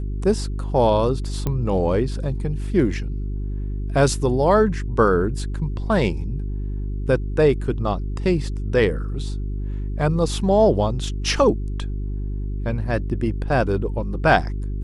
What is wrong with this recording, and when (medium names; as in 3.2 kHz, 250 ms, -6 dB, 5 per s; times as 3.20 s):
hum 50 Hz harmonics 8 -26 dBFS
1.47 s: pop -11 dBFS